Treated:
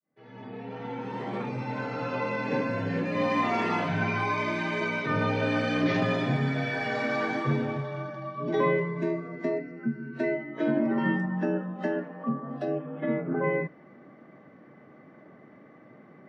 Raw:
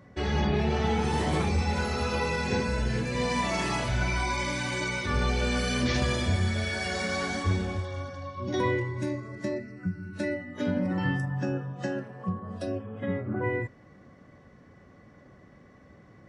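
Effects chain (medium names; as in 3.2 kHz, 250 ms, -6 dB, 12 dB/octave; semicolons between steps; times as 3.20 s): fade-in on the opening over 3.36 s; frequency shift +47 Hz; band-pass 170–2300 Hz; trim +3 dB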